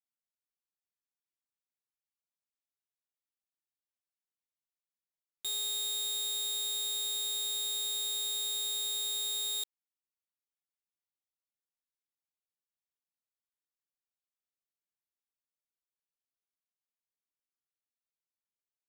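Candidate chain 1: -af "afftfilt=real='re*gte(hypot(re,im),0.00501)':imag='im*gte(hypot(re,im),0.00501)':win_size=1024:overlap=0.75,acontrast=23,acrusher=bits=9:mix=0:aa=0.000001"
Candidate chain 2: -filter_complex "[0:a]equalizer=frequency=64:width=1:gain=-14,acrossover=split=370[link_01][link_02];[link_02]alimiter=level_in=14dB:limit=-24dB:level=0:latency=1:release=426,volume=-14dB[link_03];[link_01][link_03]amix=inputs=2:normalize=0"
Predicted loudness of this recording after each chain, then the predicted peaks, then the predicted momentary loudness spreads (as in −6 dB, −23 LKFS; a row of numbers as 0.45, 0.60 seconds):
−26.5, −41.5 LKFS; −23.5, −37.0 dBFS; 2, 2 LU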